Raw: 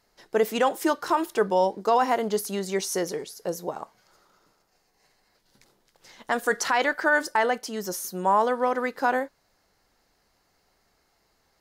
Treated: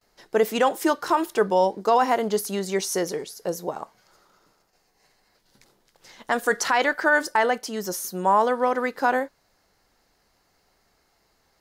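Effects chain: gate with hold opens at -59 dBFS; trim +2 dB

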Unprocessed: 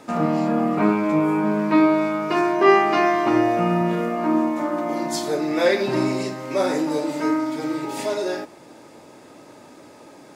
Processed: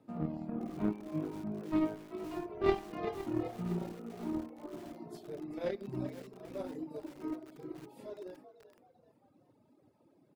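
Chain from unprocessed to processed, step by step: high-pass 77 Hz 24 dB/octave; peaking EQ 6.5 kHz -14.5 dB 1.3 oct; Chebyshev shaper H 3 -12 dB, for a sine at -4 dBFS; FFT filter 110 Hz 0 dB, 1.7 kHz -19 dB, 4.5 kHz -11 dB; on a send: frequency-shifting echo 385 ms, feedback 44%, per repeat +55 Hz, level -10.5 dB; on the sum: reverb removal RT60 1.8 s; in parallel at -12 dB: hard clipper -30.5 dBFS, distortion -10 dB; on the sum: bit-crushed delay 513 ms, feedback 55%, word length 7-bit, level -13.5 dB

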